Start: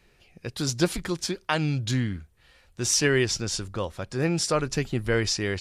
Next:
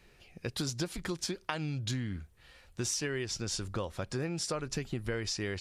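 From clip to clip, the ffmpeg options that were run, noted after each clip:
ffmpeg -i in.wav -af "acompressor=threshold=-31dB:ratio=10" out.wav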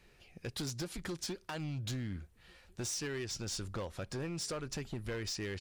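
ffmpeg -i in.wav -filter_complex "[0:a]asplit=2[link_01][link_02];[link_02]adelay=1399,volume=-30dB,highshelf=frequency=4000:gain=-31.5[link_03];[link_01][link_03]amix=inputs=2:normalize=0,volume=31.5dB,asoftclip=hard,volume=-31.5dB,volume=-2.5dB" out.wav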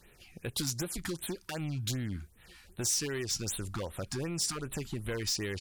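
ffmpeg -i in.wav -af "equalizer=frequency=14000:width=0.34:gain=9.5,afftfilt=real='re*(1-between(b*sr/1024,460*pow(6100/460,0.5+0.5*sin(2*PI*2.6*pts/sr))/1.41,460*pow(6100/460,0.5+0.5*sin(2*PI*2.6*pts/sr))*1.41))':imag='im*(1-between(b*sr/1024,460*pow(6100/460,0.5+0.5*sin(2*PI*2.6*pts/sr))/1.41,460*pow(6100/460,0.5+0.5*sin(2*PI*2.6*pts/sr))*1.41))':win_size=1024:overlap=0.75,volume=3.5dB" out.wav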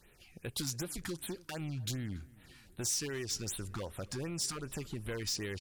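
ffmpeg -i in.wav -filter_complex "[0:a]asplit=2[link_01][link_02];[link_02]adelay=283,lowpass=frequency=2800:poles=1,volume=-22dB,asplit=2[link_03][link_04];[link_04]adelay=283,lowpass=frequency=2800:poles=1,volume=0.55,asplit=2[link_05][link_06];[link_06]adelay=283,lowpass=frequency=2800:poles=1,volume=0.55,asplit=2[link_07][link_08];[link_08]adelay=283,lowpass=frequency=2800:poles=1,volume=0.55[link_09];[link_01][link_03][link_05][link_07][link_09]amix=inputs=5:normalize=0,volume=-3.5dB" out.wav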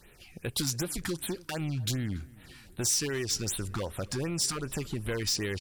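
ffmpeg -i in.wav -af "bandreject=frequency=6600:width=30,volume=6.5dB" out.wav

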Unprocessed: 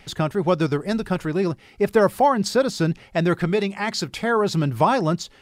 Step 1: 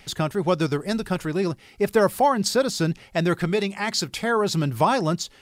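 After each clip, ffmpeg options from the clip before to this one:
ffmpeg -i in.wav -af "highshelf=frequency=4000:gain=7.5,volume=-2dB" out.wav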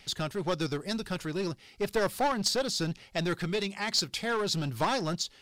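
ffmpeg -i in.wav -af "aeval=exprs='clip(val(0),-1,0.1)':channel_layout=same,equalizer=frequency=4400:width_type=o:width=1.4:gain=7,volume=-7.5dB" out.wav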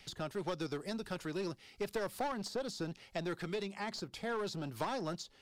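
ffmpeg -i in.wav -filter_complex "[0:a]acrossover=split=240|1300[link_01][link_02][link_03];[link_01]acompressor=threshold=-44dB:ratio=4[link_04];[link_02]acompressor=threshold=-32dB:ratio=4[link_05];[link_03]acompressor=threshold=-43dB:ratio=4[link_06];[link_04][link_05][link_06]amix=inputs=3:normalize=0,volume=-3.5dB" out.wav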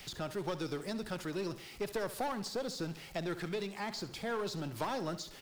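ffmpeg -i in.wav -af "aeval=exprs='val(0)+0.5*0.00355*sgn(val(0))':channel_layout=same,aecho=1:1:68|136|204|272:0.188|0.0904|0.0434|0.0208" out.wav

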